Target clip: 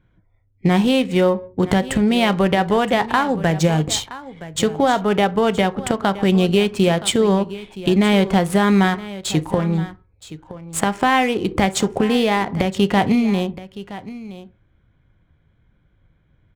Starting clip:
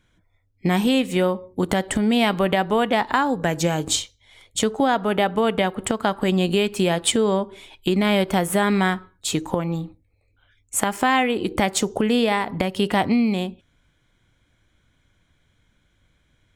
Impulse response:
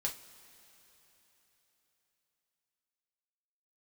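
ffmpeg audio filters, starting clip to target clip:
-filter_complex "[0:a]asplit=2[a][b];[1:a]atrim=start_sample=2205,atrim=end_sample=3969,lowshelf=f=410:g=11.5[c];[b][c]afir=irnorm=-1:irlink=0,volume=-11dB[d];[a][d]amix=inputs=2:normalize=0,adynamicsmooth=sensitivity=7.5:basefreq=2k,aecho=1:1:970:0.158"

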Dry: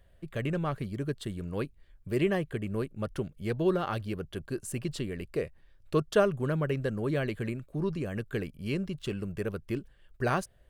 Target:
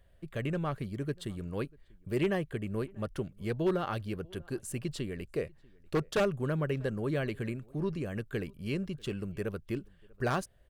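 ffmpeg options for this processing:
-filter_complex "[0:a]aeval=exprs='0.112*(abs(mod(val(0)/0.112+3,4)-2)-1)':c=same,asplit=2[a][b];[b]adelay=641.4,volume=-26dB,highshelf=f=4k:g=-14.4[c];[a][c]amix=inputs=2:normalize=0,volume=-2dB"

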